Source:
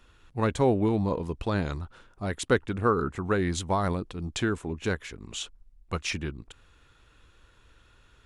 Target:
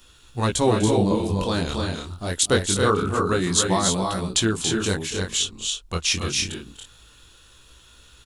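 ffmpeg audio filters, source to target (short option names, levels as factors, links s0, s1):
-filter_complex "[0:a]flanger=delay=16:depth=7.7:speed=0.26,asplit=2[s0][s1];[s1]aecho=0:1:248|281|313:0.158|0.562|0.447[s2];[s0][s2]amix=inputs=2:normalize=0,aexciter=amount=4.2:drive=3.7:freq=3000,asettb=1/sr,asplit=3[s3][s4][s5];[s3]atrim=end=5.374[s6];[s4]atrim=start=5.37:end=6.11,asetpts=PTS-STARTPTS,afade=t=in:d=0.004:c=qsin,afade=t=out:st=0.736:d=0.004:c=qsin,highshelf=f=9400:g=-9[s7];[s5]atrim=start=6.106[s8];[s6][s7]acrossfade=d=0.004:c1=hsin:c2=qsin[s9];[s9][s8]acrossfade=d=0.004:c1=qsin:c2=hsin,volume=2"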